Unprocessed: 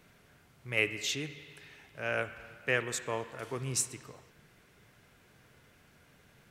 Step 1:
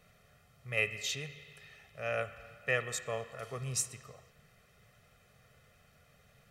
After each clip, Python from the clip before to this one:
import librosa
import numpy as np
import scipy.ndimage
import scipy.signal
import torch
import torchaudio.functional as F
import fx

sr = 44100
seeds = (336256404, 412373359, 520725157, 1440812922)

y = x + 0.85 * np.pad(x, (int(1.6 * sr / 1000.0), 0))[:len(x)]
y = y * librosa.db_to_amplitude(-4.5)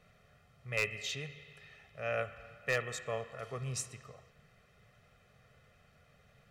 y = fx.high_shelf(x, sr, hz=7100.0, db=-12.0)
y = 10.0 ** (-22.0 / 20.0) * (np.abs((y / 10.0 ** (-22.0 / 20.0) + 3.0) % 4.0 - 2.0) - 1.0)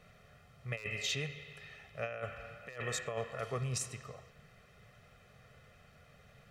y = fx.over_compress(x, sr, threshold_db=-38.0, ratio=-0.5)
y = y * librosa.db_to_amplitude(1.5)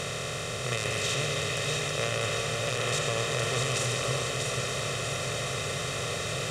y = fx.bin_compress(x, sr, power=0.2)
y = fx.echo_split(y, sr, split_hz=530.0, low_ms=487, high_ms=644, feedback_pct=52, wet_db=-4.5)